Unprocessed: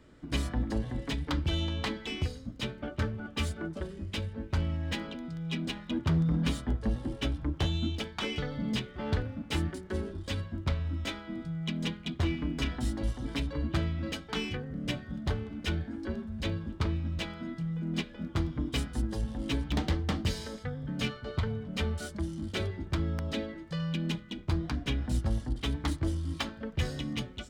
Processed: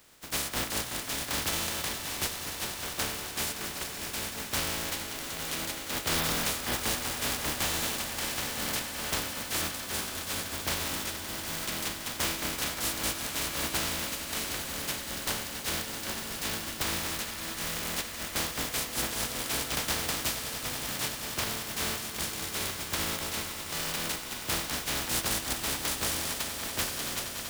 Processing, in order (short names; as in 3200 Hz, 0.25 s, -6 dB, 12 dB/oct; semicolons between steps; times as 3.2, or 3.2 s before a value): spectral contrast lowered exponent 0.2; swelling echo 95 ms, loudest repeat 8, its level -16 dB; wavefolder -19 dBFS; gain -1.5 dB